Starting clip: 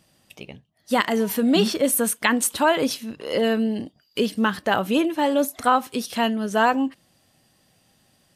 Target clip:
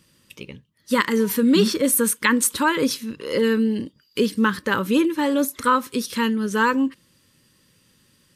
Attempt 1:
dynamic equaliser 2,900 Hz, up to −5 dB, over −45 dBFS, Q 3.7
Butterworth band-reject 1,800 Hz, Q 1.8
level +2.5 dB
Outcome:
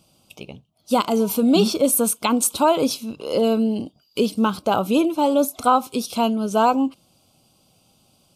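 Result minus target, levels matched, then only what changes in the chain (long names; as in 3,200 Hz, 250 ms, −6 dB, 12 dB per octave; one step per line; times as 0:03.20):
2,000 Hz band −11.0 dB
change: Butterworth band-reject 710 Hz, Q 1.8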